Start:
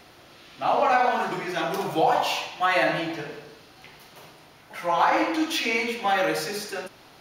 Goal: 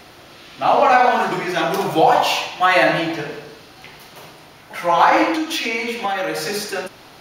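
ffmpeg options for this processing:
-filter_complex "[0:a]asettb=1/sr,asplit=3[a][b][c];[a]atrim=end=5.334[d];[b]atrim=start=5.33:end=6.46,asetpts=PTS-STARTPTS,afade=t=in:d=0.004:c=qsin,afade=t=out:st=1.126:d=0.004:c=qsin,acompressor=threshold=-27dB:ratio=5[e];[c]atrim=start=6.456[f];[d][e]acrossfade=d=0.004:c1=hsin:c2=qsin[g];[g][f]acrossfade=d=0.004:c1=qsin:c2=hsin,volume=7.5dB"

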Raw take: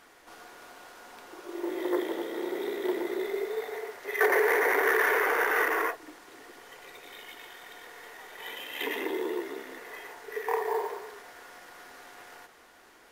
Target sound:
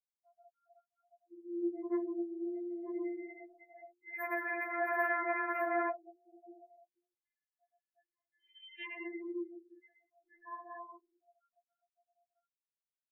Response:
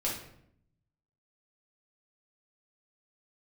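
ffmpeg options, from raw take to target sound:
-filter_complex "[0:a]asplit=3[a][b][c];[a]afade=t=out:st=4.75:d=0.02[d];[b]equalizer=f=590:t=o:w=1.3:g=12,afade=t=in:st=4.75:d=0.02,afade=t=out:st=6.84:d=0.02[e];[c]afade=t=in:st=6.84:d=0.02[f];[d][e][f]amix=inputs=3:normalize=0,acompressor=mode=upward:threshold=-37dB:ratio=2.5,afftfilt=real='re*gte(hypot(re,im),0.0355)':imag='im*gte(hypot(re,im),0.0355)':win_size=1024:overlap=0.75,afftdn=nr=22:nf=-46,equalizer=f=8.8k:t=o:w=1.1:g=6,bandreject=f=60:t=h:w=6,bandreject=f=120:t=h:w=6,bandreject=f=180:t=h:w=6,bandreject=f=240:t=h:w=6,bandreject=f=300:t=h:w=6,bandreject=f=360:t=h:w=6,afftfilt=real='re*4*eq(mod(b,16),0)':imag='im*4*eq(mod(b,16),0)':win_size=2048:overlap=0.75,volume=-8.5dB"

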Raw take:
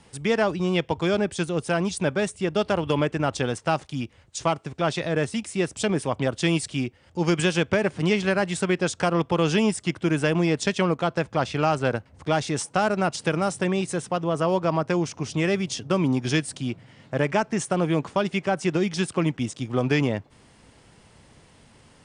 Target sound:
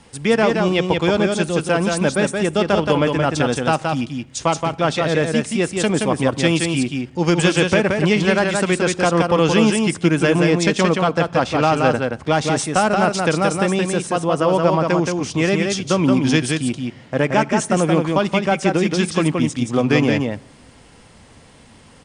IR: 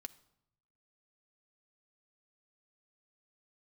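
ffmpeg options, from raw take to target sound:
-filter_complex "[0:a]aecho=1:1:174:0.631,asplit=2[a][b];[1:a]atrim=start_sample=2205[c];[b][c]afir=irnorm=-1:irlink=0,volume=4.5dB[d];[a][d]amix=inputs=2:normalize=0"

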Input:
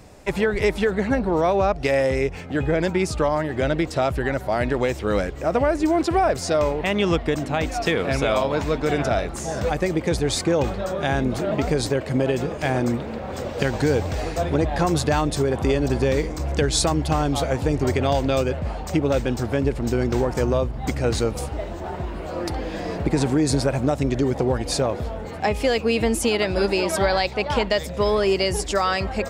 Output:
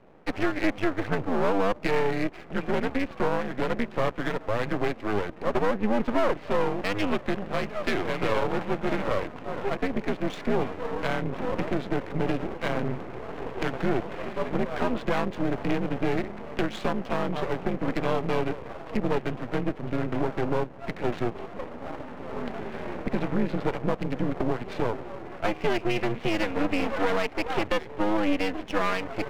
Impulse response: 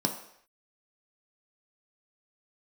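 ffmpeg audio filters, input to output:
-af "adynamicsmooth=sensitivity=7:basefreq=1.5k,highpass=f=260:t=q:w=0.5412,highpass=f=260:t=q:w=1.307,lowpass=f=3.1k:t=q:w=0.5176,lowpass=f=3.1k:t=q:w=0.7071,lowpass=f=3.1k:t=q:w=1.932,afreqshift=-100,aeval=exprs='max(val(0),0)':c=same"

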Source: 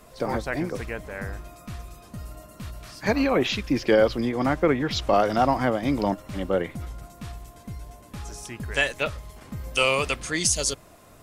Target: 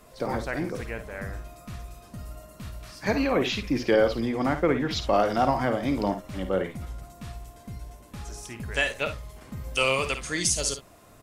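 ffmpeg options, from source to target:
-af "aecho=1:1:53|69:0.316|0.168,volume=-2.5dB"

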